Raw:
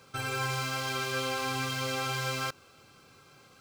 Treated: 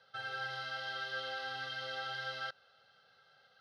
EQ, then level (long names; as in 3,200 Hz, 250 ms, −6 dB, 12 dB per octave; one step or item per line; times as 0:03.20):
high-pass filter 870 Hz 6 dB per octave
low-pass filter 3,700 Hz 12 dB per octave
phaser with its sweep stopped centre 1,600 Hz, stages 8
−2.0 dB